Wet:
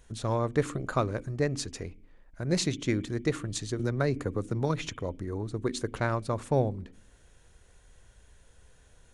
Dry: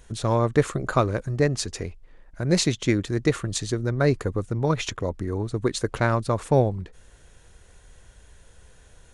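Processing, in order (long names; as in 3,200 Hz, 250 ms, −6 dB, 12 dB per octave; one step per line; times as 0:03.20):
on a send at −4.5 dB: formant resonators in series i + convolution reverb RT60 0.65 s, pre-delay 37 ms
0:03.79–0:04.88: on the sum: multiband upward and downward compressor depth 70%
level −6.5 dB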